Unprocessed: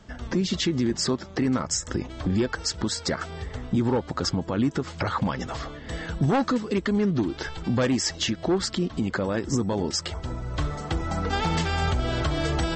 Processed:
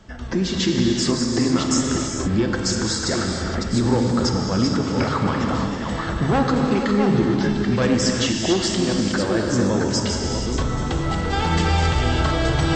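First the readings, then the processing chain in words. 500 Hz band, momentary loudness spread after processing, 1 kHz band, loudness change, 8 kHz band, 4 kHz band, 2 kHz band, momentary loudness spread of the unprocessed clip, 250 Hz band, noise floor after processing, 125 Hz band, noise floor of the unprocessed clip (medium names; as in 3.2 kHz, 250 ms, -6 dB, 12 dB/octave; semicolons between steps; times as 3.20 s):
+5.5 dB, 5 LU, +5.5 dB, +6.0 dB, +5.5 dB, +5.5 dB, +5.5 dB, 8 LU, +6.0 dB, -27 dBFS, +6.0 dB, -42 dBFS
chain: chunks repeated in reverse 558 ms, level -5.5 dB; gated-style reverb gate 490 ms flat, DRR 1 dB; trim +2 dB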